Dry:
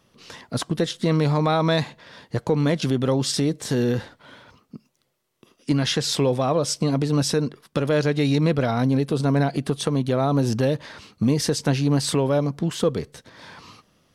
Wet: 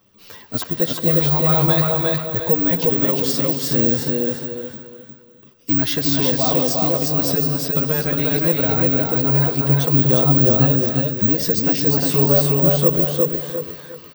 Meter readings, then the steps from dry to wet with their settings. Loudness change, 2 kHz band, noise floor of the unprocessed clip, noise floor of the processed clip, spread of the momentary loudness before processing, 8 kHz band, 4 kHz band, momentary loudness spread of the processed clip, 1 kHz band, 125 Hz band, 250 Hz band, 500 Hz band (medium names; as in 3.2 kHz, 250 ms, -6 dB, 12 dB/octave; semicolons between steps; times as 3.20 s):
+6.5 dB, +2.0 dB, -67 dBFS, -47 dBFS, 7 LU, +1.5 dB, +1.5 dB, 10 LU, +1.0 dB, +3.0 dB, +2.0 dB, +2.5 dB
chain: chorus voices 2, 0.2 Hz, delay 10 ms, depth 2.2 ms; on a send: feedback delay 356 ms, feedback 29%, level -3 dB; on the sum: careless resampling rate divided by 2×, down filtered, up zero stuff; gated-style reverb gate 390 ms rising, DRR 7 dB; trim +2 dB